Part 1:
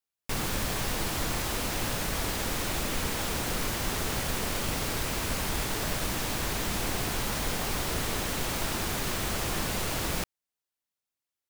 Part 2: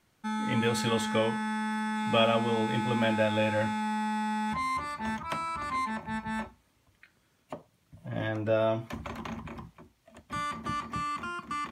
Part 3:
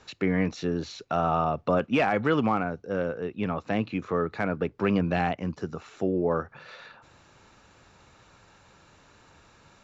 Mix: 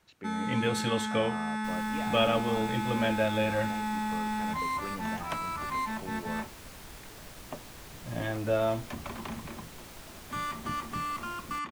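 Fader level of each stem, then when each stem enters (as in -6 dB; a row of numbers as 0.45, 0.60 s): -16.5, -1.0, -17.0 dB; 1.35, 0.00, 0.00 s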